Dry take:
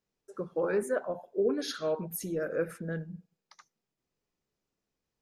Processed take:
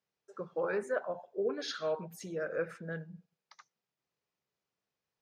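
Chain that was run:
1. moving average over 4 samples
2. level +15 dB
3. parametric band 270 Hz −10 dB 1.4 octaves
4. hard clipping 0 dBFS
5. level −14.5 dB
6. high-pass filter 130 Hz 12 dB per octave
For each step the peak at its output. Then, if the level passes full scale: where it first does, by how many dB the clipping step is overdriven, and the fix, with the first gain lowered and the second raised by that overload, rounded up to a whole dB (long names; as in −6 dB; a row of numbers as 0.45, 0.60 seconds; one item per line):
−16.5, −1.5, −5.5, −5.5, −20.0, −20.0 dBFS
no step passes full scale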